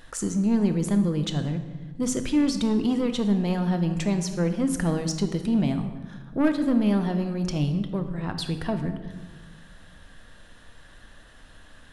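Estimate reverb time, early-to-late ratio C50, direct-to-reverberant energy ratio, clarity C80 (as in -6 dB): 1.3 s, 9.0 dB, 7.0 dB, 11.0 dB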